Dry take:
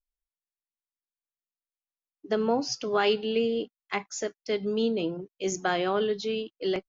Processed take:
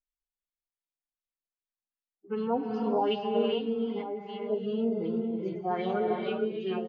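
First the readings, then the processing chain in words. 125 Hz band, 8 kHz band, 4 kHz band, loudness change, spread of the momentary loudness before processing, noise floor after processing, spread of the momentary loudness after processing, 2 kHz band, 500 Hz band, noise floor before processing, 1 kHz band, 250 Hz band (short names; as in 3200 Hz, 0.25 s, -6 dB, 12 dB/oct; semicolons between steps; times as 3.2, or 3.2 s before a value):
0.0 dB, n/a, -7.5 dB, -2.0 dB, 8 LU, under -85 dBFS, 6 LU, -10.0 dB, -2.0 dB, under -85 dBFS, -1.0 dB, +0.5 dB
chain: median-filter separation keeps harmonic; on a send: echo 1.043 s -10 dB; on the sum: LFO low-pass sine 2.6 Hz 710–3600 Hz; bell 170 Hz +4.5 dB 2.1 oct; non-linear reverb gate 0.48 s rising, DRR 1.5 dB; gain -7 dB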